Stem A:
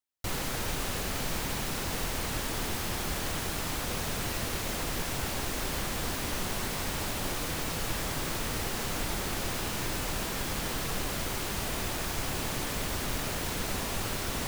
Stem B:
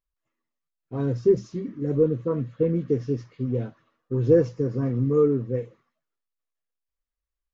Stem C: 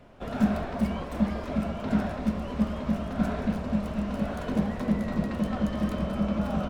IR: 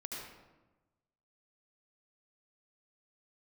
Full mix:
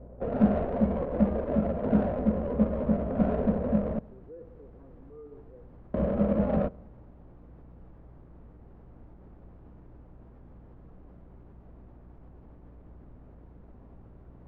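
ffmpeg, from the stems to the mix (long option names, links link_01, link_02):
-filter_complex "[0:a]volume=-13.5dB[link_01];[1:a]highpass=650,volume=-10.5dB,asplit=2[link_02][link_03];[link_03]volume=-14.5dB[link_04];[2:a]equalizer=frequency=500:width=2.8:gain=12,volume=0.5dB,asplit=3[link_05][link_06][link_07];[link_05]atrim=end=3.99,asetpts=PTS-STARTPTS,afade=type=out:start_time=3.986:duration=0.004:curve=hsin[link_08];[link_06]atrim=start=3.99:end=5.94,asetpts=PTS-STARTPTS,volume=0[link_09];[link_07]atrim=start=5.94,asetpts=PTS-STARTPTS,afade=type=in:duration=0.004:curve=hsin[link_10];[link_08][link_09][link_10]concat=n=3:v=0:a=1,asplit=2[link_11][link_12];[link_12]volume=-20.5dB[link_13];[link_01][link_02]amix=inputs=2:normalize=0,aeval=exprs='val(0)+0.00398*(sin(2*PI*60*n/s)+sin(2*PI*2*60*n/s)/2+sin(2*PI*3*60*n/s)/3+sin(2*PI*4*60*n/s)/4+sin(2*PI*5*60*n/s)/5)':channel_layout=same,alimiter=level_in=14.5dB:limit=-24dB:level=0:latency=1:release=81,volume=-14.5dB,volume=0dB[link_14];[3:a]atrim=start_sample=2205[link_15];[link_04][link_13]amix=inputs=2:normalize=0[link_16];[link_16][link_15]afir=irnorm=-1:irlink=0[link_17];[link_11][link_14][link_17]amix=inputs=3:normalize=0,highshelf=frequency=2200:gain=-10.5,adynamicsmooth=sensitivity=1:basefreq=820"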